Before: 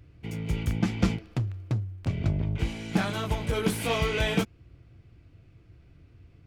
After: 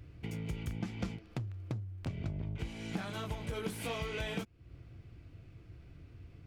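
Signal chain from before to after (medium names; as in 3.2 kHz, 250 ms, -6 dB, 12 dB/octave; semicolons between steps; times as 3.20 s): compression 3:1, threshold -40 dBFS, peak gain reduction 16.5 dB; trim +1 dB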